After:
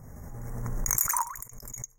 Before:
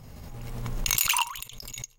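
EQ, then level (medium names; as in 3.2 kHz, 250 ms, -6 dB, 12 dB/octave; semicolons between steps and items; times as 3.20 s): elliptic band-stop 1.9–6 kHz, stop band 40 dB; 0.0 dB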